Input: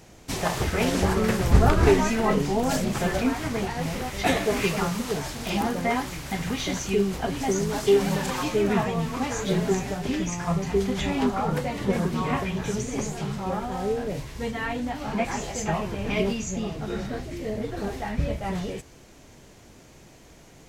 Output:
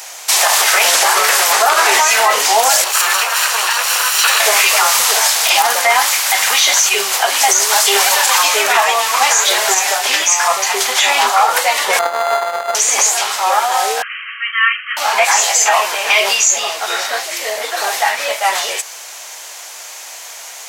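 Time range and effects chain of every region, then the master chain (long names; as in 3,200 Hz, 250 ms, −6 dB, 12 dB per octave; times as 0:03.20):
0:02.84–0:04.40: lower of the sound and its delayed copy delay 0.7 ms + downward compressor 3 to 1, threshold −27 dBFS + linear-phase brick-wall high-pass 350 Hz
0:11.99–0:12.75: samples sorted by size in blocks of 64 samples + head-to-tape spacing loss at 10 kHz 31 dB + linearly interpolated sample-rate reduction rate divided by 8×
0:14.02–0:14.97: linear-phase brick-wall band-pass 1,100–3,200 Hz + dynamic equaliser 1,600 Hz, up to −5 dB, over −50 dBFS, Q 6.3
whole clip: high-pass filter 730 Hz 24 dB per octave; high-shelf EQ 4,400 Hz +9.5 dB; boost into a limiter +21 dB; level −1 dB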